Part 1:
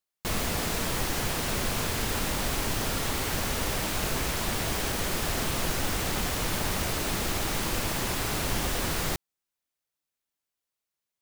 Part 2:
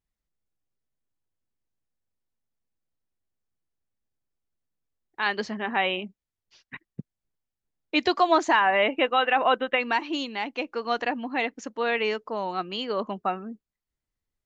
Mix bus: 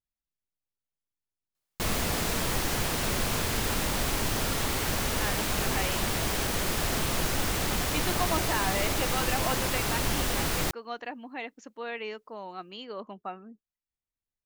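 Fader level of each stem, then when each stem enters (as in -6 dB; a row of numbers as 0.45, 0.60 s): +0.5, -10.5 dB; 1.55, 0.00 s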